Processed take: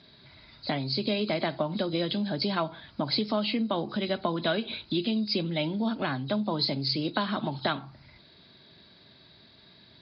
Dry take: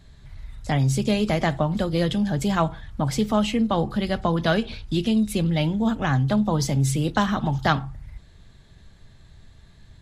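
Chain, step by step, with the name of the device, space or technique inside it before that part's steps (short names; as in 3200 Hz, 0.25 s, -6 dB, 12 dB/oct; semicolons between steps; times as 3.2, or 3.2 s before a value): hearing aid with frequency lowering (nonlinear frequency compression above 3800 Hz 4:1; compressor 3:1, threshold -27 dBFS, peak gain reduction 10 dB; speaker cabinet 330–5500 Hz, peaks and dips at 480 Hz -8 dB, 800 Hz -9 dB, 1200 Hz -7 dB, 1800 Hz -9 dB, 2900 Hz -5 dB); gain +7.5 dB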